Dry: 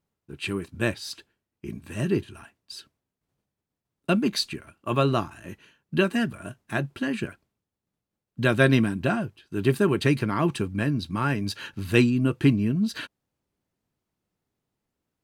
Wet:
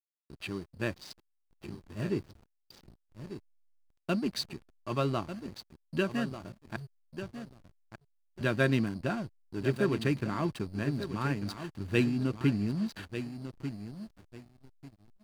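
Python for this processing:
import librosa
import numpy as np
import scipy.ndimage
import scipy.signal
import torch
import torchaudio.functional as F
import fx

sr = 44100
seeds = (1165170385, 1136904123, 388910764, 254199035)

p1 = fx.cheby2_bandstop(x, sr, low_hz=430.0, high_hz=8800.0, order=4, stop_db=60, at=(6.76, 8.41))
p2 = p1 + 10.0 ** (-41.0 / 20.0) * np.sin(2.0 * np.pi * 4600.0 * np.arange(len(p1)) / sr)
p3 = p2 + fx.echo_feedback(p2, sr, ms=1194, feedback_pct=29, wet_db=-10.0, dry=0)
p4 = fx.backlash(p3, sr, play_db=-29.5)
y = F.gain(torch.from_numpy(p4), -7.5).numpy()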